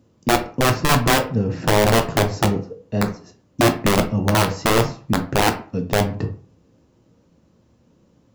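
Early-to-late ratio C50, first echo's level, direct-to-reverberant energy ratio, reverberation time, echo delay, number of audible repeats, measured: 12.0 dB, no echo audible, 5.0 dB, 0.40 s, no echo audible, no echo audible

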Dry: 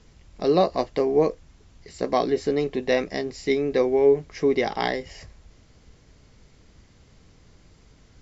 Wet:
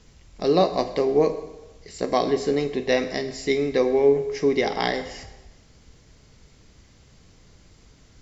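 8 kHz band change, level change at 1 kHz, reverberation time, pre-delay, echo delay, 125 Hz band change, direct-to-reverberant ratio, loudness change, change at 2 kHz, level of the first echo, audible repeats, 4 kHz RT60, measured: can't be measured, +0.5 dB, 1.1 s, 24 ms, no echo audible, +1.0 dB, 9.5 dB, +0.5 dB, +1.5 dB, no echo audible, no echo audible, 0.95 s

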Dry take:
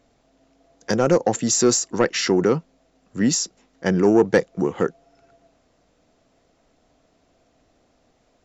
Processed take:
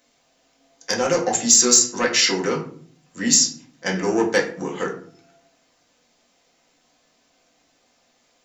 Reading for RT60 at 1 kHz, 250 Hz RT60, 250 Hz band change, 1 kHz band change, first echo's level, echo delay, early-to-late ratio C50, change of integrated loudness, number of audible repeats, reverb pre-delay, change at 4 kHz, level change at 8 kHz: 0.45 s, 0.80 s, −4.5 dB, 0.0 dB, no echo audible, no echo audible, 9.5 dB, +2.0 dB, no echo audible, 4 ms, +7.5 dB, can't be measured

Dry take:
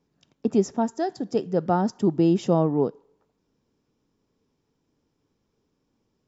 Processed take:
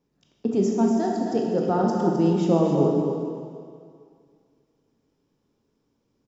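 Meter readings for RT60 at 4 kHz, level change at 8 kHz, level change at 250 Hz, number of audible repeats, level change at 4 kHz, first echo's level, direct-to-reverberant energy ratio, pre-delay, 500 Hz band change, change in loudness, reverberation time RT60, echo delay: 2.0 s, can't be measured, +2.0 dB, 1, 0.0 dB, −8.5 dB, −1.5 dB, 15 ms, +2.0 dB, +1.5 dB, 2.2 s, 261 ms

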